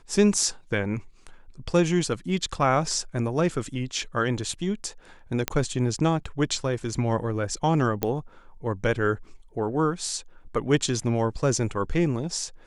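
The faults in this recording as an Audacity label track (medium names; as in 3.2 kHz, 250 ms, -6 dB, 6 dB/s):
5.480000	5.480000	pop -6 dBFS
8.030000	8.030000	pop -10 dBFS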